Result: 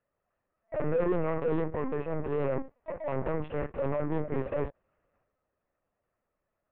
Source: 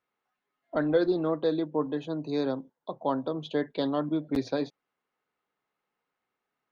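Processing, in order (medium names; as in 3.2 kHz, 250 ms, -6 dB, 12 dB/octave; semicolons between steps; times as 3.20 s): median filter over 41 samples; high-order bell 1.2 kHz +14.5 dB 2.8 oct; saturation -8 dBFS, distortion -20 dB; peak limiter -20 dBFS, peak gain reduction 11.5 dB; comb of notches 780 Hz; transient shaper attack -3 dB, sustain +8 dB; distance through air 490 m; LPC vocoder at 8 kHz pitch kept; trim +1.5 dB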